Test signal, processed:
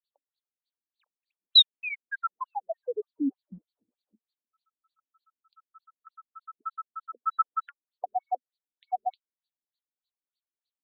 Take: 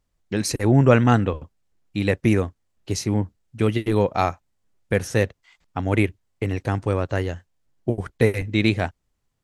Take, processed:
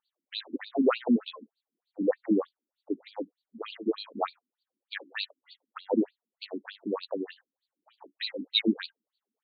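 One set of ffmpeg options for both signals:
-af "flanger=delay=3.3:depth=1.4:regen=62:speed=0.38:shape=triangular,highshelf=f=3.3k:t=q:w=3:g=11.5,acontrast=46,afftfilt=real='re*between(b*sr/1024,250*pow(3400/250,0.5+0.5*sin(2*PI*3.3*pts/sr))/1.41,250*pow(3400/250,0.5+0.5*sin(2*PI*3.3*pts/sr))*1.41)':imag='im*between(b*sr/1024,250*pow(3400/250,0.5+0.5*sin(2*PI*3.3*pts/sr))/1.41,250*pow(3400/250,0.5+0.5*sin(2*PI*3.3*pts/sr))*1.41)':win_size=1024:overlap=0.75,volume=-2dB"

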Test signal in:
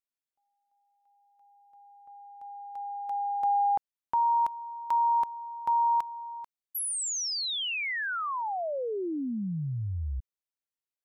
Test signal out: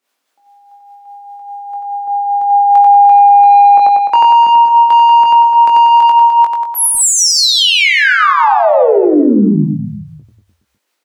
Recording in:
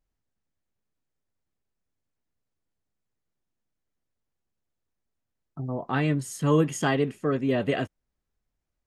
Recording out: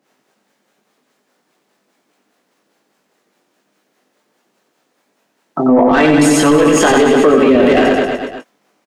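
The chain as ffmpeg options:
-filter_complex "[0:a]highpass=f=200:w=0.5412,highpass=f=200:w=1.3066,asplit=2[a][b];[b]highpass=f=720:p=1,volume=19dB,asoftclip=type=tanh:threshold=-11dB[c];[a][c]amix=inputs=2:normalize=0,lowpass=f=4.4k:p=1,volume=-6dB,acompressor=threshold=-25dB:ratio=6:attack=98:release=44:detection=rms,tiltshelf=f=720:g=4.5,acrossover=split=420[d][e];[d]aeval=exprs='val(0)*(1-0.7/2+0.7/2*cos(2*PI*4.9*n/s))':c=same[f];[e]aeval=exprs='val(0)*(1-0.7/2-0.7/2*cos(2*PI*4.9*n/s))':c=same[g];[f][g]amix=inputs=2:normalize=0,asplit=2[h][i];[i]adelay=20,volume=-6dB[j];[h][j]amix=inputs=2:normalize=0,asplit=2[k][l];[l]aecho=0:1:90|189|297.9|417.7|549.5:0.631|0.398|0.251|0.158|0.1[m];[k][m]amix=inputs=2:normalize=0,alimiter=level_in=21.5dB:limit=-1dB:release=50:level=0:latency=1,volume=-1dB"

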